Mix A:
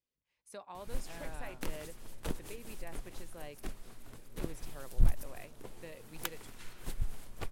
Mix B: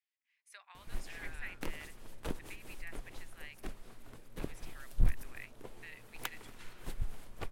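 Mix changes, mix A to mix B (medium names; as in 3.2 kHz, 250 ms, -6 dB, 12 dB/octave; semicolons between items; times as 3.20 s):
speech: add resonant high-pass 1.9 kHz, resonance Q 2.4; master: add tone controls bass -2 dB, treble -5 dB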